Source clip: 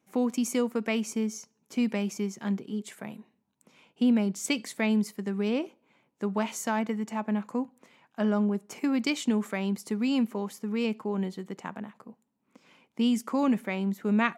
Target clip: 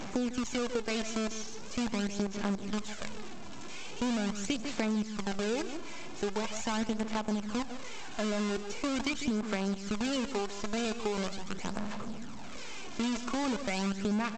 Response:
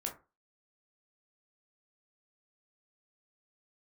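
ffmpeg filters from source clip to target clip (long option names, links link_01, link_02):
-filter_complex "[0:a]aeval=exprs='val(0)+0.5*0.0335*sgn(val(0))':channel_layout=same,aresample=16000,acrusher=bits=5:dc=4:mix=0:aa=0.000001,aresample=44100,bandreject=frequency=1900:width=18,asplit=2[link_01][link_02];[link_02]aecho=0:1:149:0.237[link_03];[link_01][link_03]amix=inputs=2:normalize=0,aphaser=in_gain=1:out_gain=1:delay=3:decay=0.48:speed=0.42:type=sinusoidal,acompressor=threshold=-24dB:ratio=6,volume=-4.5dB"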